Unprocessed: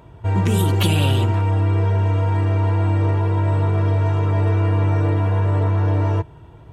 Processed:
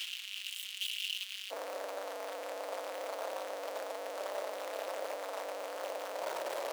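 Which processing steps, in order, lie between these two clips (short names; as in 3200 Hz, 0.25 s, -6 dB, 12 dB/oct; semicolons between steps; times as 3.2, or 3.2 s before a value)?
infinite clipping; ladder high-pass 2700 Hz, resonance 70%, from 1.5 s 520 Hz; gain -8.5 dB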